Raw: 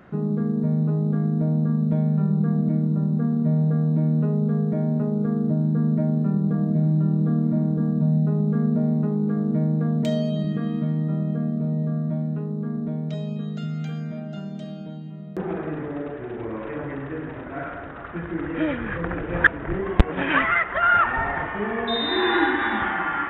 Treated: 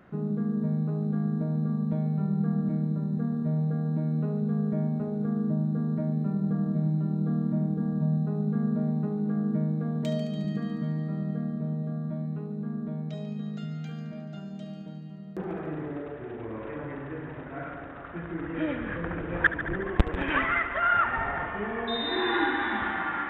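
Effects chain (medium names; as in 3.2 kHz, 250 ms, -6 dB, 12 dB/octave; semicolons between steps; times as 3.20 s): on a send: multi-head delay 72 ms, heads first and second, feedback 70%, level -15 dB; on the sum: trim -6 dB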